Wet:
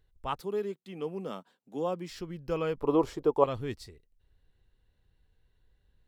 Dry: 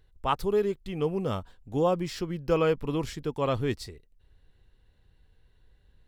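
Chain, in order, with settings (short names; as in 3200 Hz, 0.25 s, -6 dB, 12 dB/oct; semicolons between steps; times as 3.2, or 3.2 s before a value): 0.4–2.1 steep high-pass 170 Hz 36 dB/oct; 2.8–3.44 band shelf 620 Hz +14.5 dB 2.3 oct; gain -7 dB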